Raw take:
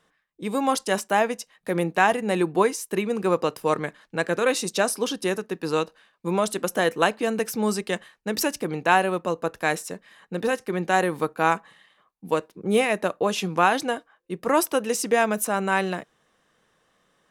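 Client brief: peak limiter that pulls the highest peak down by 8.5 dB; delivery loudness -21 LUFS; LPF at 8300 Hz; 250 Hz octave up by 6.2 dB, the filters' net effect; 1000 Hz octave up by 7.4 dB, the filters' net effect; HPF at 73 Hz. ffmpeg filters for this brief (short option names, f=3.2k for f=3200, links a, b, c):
-af "highpass=73,lowpass=8.3k,equalizer=f=250:t=o:g=8,equalizer=f=1k:t=o:g=9,volume=1dB,alimiter=limit=-6.5dB:level=0:latency=1"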